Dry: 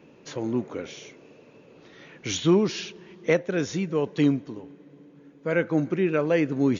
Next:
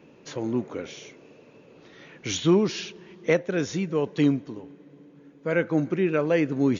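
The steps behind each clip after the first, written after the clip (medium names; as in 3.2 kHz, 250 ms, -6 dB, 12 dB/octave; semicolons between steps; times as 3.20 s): no audible change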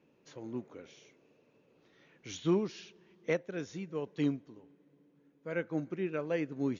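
upward expansion 1.5:1, over -30 dBFS; trim -8.5 dB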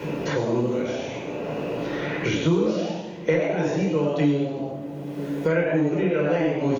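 on a send: frequency-shifting echo 95 ms, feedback 35%, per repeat +130 Hz, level -4 dB; on the sum: simulated room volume 870 m³, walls furnished, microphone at 4.7 m; three bands compressed up and down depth 100%; trim +4 dB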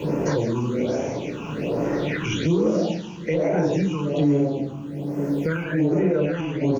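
peak limiter -16.5 dBFS, peak gain reduction 7 dB; phase shifter stages 8, 1.2 Hz, lowest notch 550–3800 Hz; feedback echo behind a high-pass 173 ms, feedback 60%, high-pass 5.1 kHz, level -11 dB; trim +4 dB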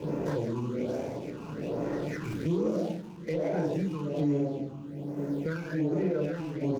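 median filter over 15 samples; trim -8 dB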